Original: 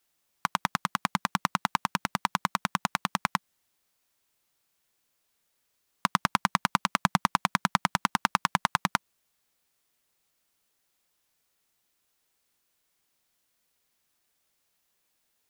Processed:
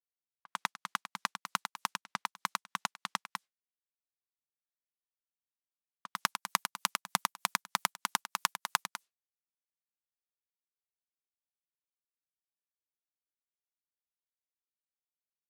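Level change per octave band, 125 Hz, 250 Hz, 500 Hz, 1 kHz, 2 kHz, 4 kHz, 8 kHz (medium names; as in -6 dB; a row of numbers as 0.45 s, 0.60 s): -18.5 dB, -17.0 dB, -11.5 dB, -9.0 dB, -7.0 dB, -4.0 dB, -0.5 dB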